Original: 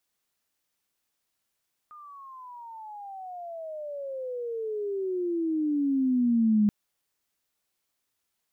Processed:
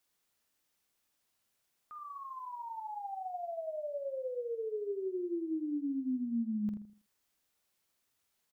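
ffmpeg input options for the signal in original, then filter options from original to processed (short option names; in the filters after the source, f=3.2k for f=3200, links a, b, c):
-f lavfi -i "aevalsrc='pow(10,(-18+26*(t/4.78-1))/20)*sin(2*PI*1230*4.78/(-31*log(2)/12)*(exp(-31*log(2)/12*t/4.78)-1))':d=4.78:s=44100"
-filter_complex "[0:a]acompressor=threshold=-39dB:ratio=3,asplit=2[a][b];[b]adelay=47,volume=-10dB[c];[a][c]amix=inputs=2:normalize=0,asplit=2[d][e];[e]adelay=81,lowpass=f=970:p=1,volume=-7.5dB,asplit=2[f][g];[g]adelay=81,lowpass=f=970:p=1,volume=0.33,asplit=2[h][i];[i]adelay=81,lowpass=f=970:p=1,volume=0.33,asplit=2[j][k];[k]adelay=81,lowpass=f=970:p=1,volume=0.33[l];[f][h][j][l]amix=inputs=4:normalize=0[m];[d][m]amix=inputs=2:normalize=0"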